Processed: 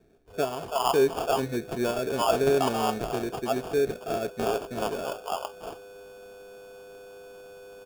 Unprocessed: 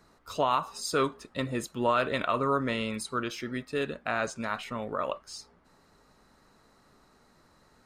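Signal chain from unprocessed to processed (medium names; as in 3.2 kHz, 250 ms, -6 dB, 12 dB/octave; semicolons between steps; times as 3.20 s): whistle 8.5 kHz -47 dBFS; bands offset in time lows, highs 330 ms, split 670 Hz; sample-rate reducer 2 kHz, jitter 0%; small resonant body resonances 410/680 Hz, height 11 dB, ringing for 40 ms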